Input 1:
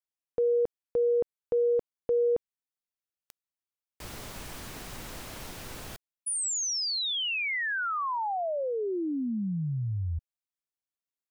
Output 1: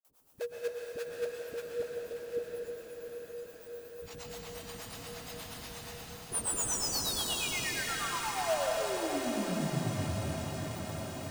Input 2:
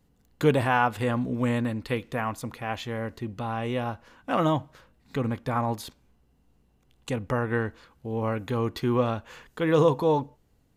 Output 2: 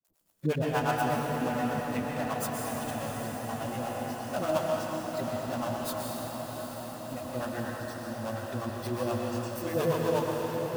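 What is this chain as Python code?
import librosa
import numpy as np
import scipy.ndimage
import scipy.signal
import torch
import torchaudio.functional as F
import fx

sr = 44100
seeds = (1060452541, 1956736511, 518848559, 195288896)

p1 = x + 0.5 * 10.0 ** (-23.5 / 20.0) * np.diff(np.sign(x), prepend=np.sign(x[:1]))
p2 = scipy.signal.sosfilt(scipy.signal.butter(2, 55.0, 'highpass', fs=sr, output='sos'), p1)
p3 = fx.noise_reduce_blind(p2, sr, reduce_db=27)
p4 = fx.peak_eq(p3, sr, hz=630.0, db=10.5, octaves=0.26)
p5 = fx.dispersion(p4, sr, late='highs', ms=48.0, hz=480.0)
p6 = fx.sample_hold(p5, sr, seeds[0], rate_hz=2100.0, jitter_pct=20)
p7 = p5 + (p6 * librosa.db_to_amplitude(-7.0))
p8 = fx.harmonic_tremolo(p7, sr, hz=8.4, depth_pct=100, crossover_hz=460.0)
p9 = p8 + fx.echo_diffused(p8, sr, ms=755, feedback_pct=74, wet_db=-7.5, dry=0)
p10 = fx.rev_plate(p9, sr, seeds[1], rt60_s=3.1, hf_ratio=0.8, predelay_ms=105, drr_db=-1.0)
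y = p10 * librosa.db_to_amplitude(-6.5)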